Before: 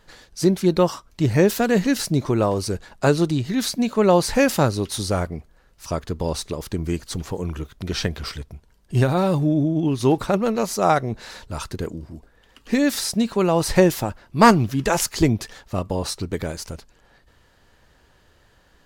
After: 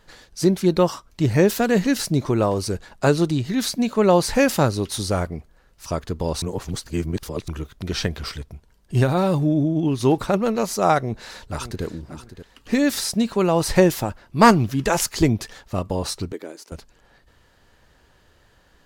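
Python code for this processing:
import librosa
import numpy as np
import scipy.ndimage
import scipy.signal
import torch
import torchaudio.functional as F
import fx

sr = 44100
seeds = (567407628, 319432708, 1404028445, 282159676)

y = fx.echo_throw(x, sr, start_s=10.94, length_s=0.9, ms=580, feedback_pct=30, wet_db=-12.5)
y = fx.ladder_highpass(y, sr, hz=270.0, resonance_pct=50, at=(16.32, 16.72))
y = fx.edit(y, sr, fx.reverse_span(start_s=6.42, length_s=1.06), tone=tone)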